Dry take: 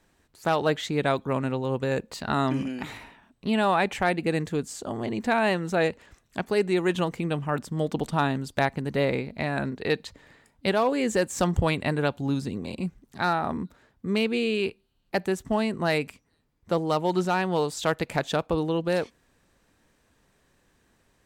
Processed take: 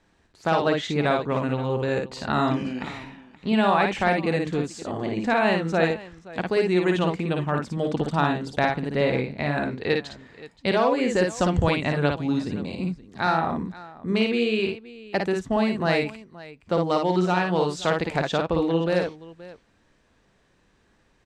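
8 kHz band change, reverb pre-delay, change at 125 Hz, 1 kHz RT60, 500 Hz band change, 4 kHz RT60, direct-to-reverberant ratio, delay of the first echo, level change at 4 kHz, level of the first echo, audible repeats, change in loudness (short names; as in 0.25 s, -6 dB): -3.0 dB, none, +2.5 dB, none, +2.5 dB, none, none, 55 ms, +2.0 dB, -4.0 dB, 2, +2.5 dB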